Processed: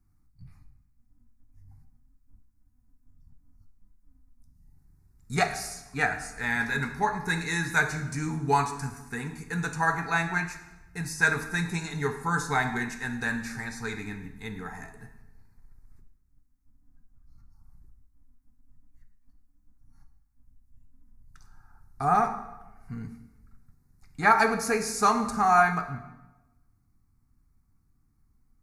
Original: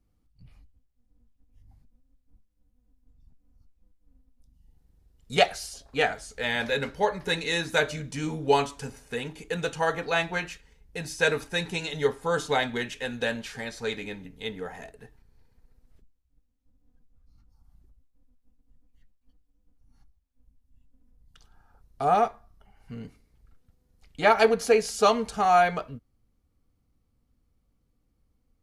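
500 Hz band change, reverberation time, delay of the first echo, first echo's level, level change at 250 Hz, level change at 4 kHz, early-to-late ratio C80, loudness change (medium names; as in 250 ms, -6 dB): -7.5 dB, 1.0 s, no echo, no echo, +2.0 dB, -7.5 dB, 12.0 dB, -1.0 dB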